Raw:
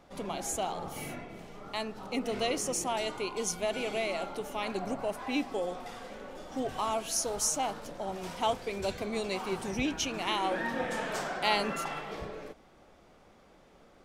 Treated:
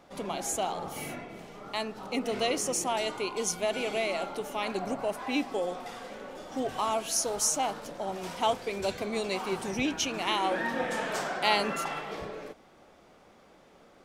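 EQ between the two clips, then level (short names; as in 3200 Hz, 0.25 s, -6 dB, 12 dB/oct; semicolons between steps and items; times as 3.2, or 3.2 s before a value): low shelf 87 Hz -10.5 dB; +2.5 dB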